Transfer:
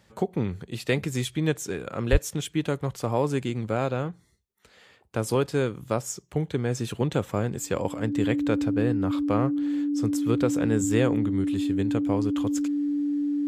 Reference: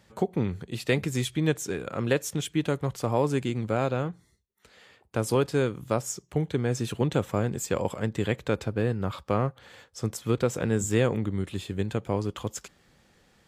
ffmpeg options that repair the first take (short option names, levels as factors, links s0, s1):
-filter_complex "[0:a]bandreject=f=290:w=30,asplit=3[s0][s1][s2];[s0]afade=t=out:st=2.11:d=0.02[s3];[s1]highpass=f=140:w=0.5412,highpass=f=140:w=1.3066,afade=t=in:st=2.11:d=0.02,afade=t=out:st=2.23:d=0.02[s4];[s2]afade=t=in:st=2.23:d=0.02[s5];[s3][s4][s5]amix=inputs=3:normalize=0"